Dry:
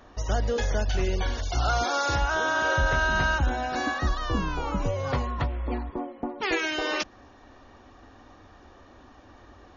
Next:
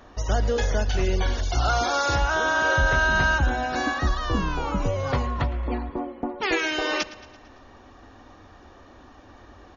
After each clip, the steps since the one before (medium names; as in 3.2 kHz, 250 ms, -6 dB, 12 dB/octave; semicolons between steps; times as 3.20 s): feedback delay 112 ms, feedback 56%, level -18 dB; trim +2.5 dB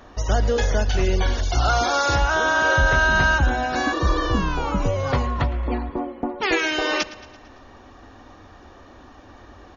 spectral replace 3.95–4.26 s, 230–2600 Hz after; trim +3 dB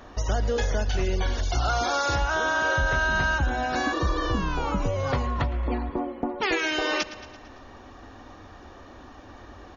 compression 2:1, threshold -25 dBFS, peak gain reduction 6.5 dB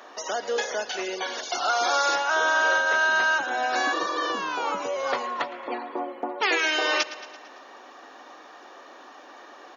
Bessel high-pass 510 Hz, order 4; trim +3.5 dB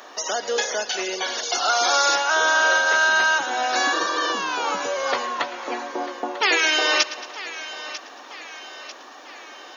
treble shelf 3.4 kHz +8.5 dB; thinning echo 945 ms, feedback 53%, high-pass 490 Hz, level -14 dB; trim +2 dB